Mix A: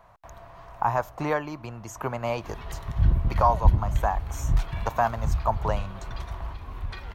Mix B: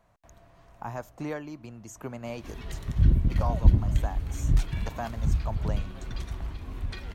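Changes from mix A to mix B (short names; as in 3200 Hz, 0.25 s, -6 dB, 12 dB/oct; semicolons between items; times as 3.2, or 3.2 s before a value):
speech -8.0 dB; master: add graphic EQ 250/1000/8000 Hz +7/-8/+6 dB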